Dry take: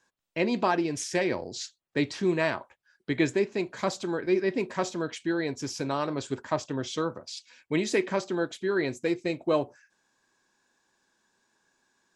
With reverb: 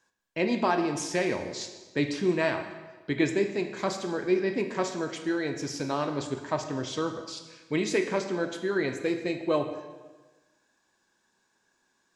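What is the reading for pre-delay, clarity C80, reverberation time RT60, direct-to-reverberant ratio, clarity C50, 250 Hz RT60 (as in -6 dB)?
17 ms, 9.5 dB, 1.3 s, 6.0 dB, 8.0 dB, 1.3 s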